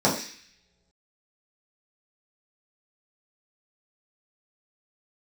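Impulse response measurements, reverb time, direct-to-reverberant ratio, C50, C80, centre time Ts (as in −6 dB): non-exponential decay, −7.0 dB, 7.0 dB, 10.0 dB, 30 ms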